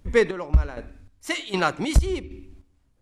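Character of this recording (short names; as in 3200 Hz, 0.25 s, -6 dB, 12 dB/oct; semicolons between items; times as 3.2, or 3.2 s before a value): chopped level 1.3 Hz, depth 65%, duty 40%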